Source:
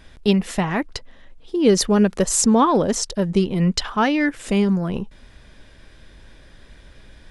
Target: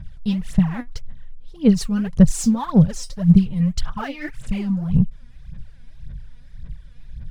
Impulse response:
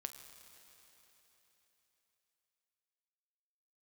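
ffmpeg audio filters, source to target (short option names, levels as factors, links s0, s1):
-af "lowshelf=f=220:t=q:w=3:g=13.5,aphaser=in_gain=1:out_gain=1:delay=4.2:decay=0.79:speed=1.8:type=sinusoidal,volume=0.211"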